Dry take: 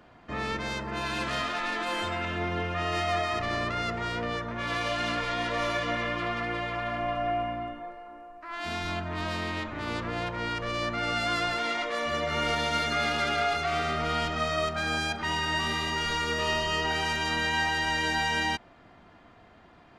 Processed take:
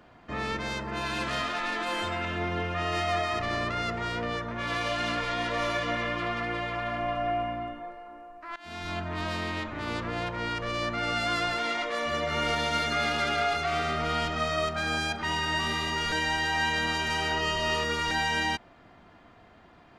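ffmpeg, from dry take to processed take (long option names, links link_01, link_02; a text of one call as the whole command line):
ffmpeg -i in.wav -filter_complex "[0:a]asplit=4[link_01][link_02][link_03][link_04];[link_01]atrim=end=8.56,asetpts=PTS-STARTPTS,afade=type=out:start_time=8.556:duration=0.004:curve=hsin:silence=0.112202[link_05];[link_02]atrim=start=8.56:end=16.122,asetpts=PTS-STARTPTS,afade=type=in:duration=0.45:silence=0.112202[link_06];[link_03]atrim=start=16.118:end=18.112,asetpts=PTS-STARTPTS,areverse[link_07];[link_04]atrim=start=18.108[link_08];[link_05][link_06]concat=n=2:v=0:a=1[link_09];[link_09][link_07]acrossfade=duration=0.004:curve1=hsin:curve2=hsin[link_10];[link_10][link_08]acrossfade=duration=0.004:curve1=hsin:curve2=hsin" out.wav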